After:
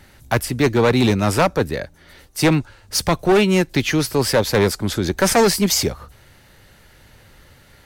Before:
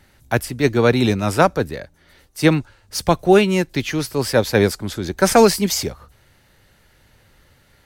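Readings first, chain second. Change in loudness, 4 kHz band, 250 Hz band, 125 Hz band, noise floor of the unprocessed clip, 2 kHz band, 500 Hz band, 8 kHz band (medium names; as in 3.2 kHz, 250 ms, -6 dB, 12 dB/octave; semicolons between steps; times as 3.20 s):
0.0 dB, +2.5 dB, 0.0 dB, +1.0 dB, -56 dBFS, +0.5 dB, -1.0 dB, +3.0 dB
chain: in parallel at +1.5 dB: compression 6:1, threshold -22 dBFS, peak gain reduction 14.5 dB; on the sum: hard clipper -9 dBFS, distortion -10 dB; trim -1 dB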